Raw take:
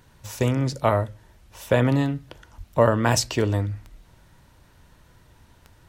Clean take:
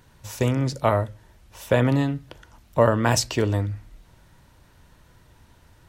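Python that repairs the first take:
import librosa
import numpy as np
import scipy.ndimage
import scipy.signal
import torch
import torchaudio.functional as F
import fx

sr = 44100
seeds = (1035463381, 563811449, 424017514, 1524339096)

y = fx.fix_declick_ar(x, sr, threshold=10.0)
y = fx.highpass(y, sr, hz=140.0, slope=24, at=(2.57, 2.69), fade=0.02)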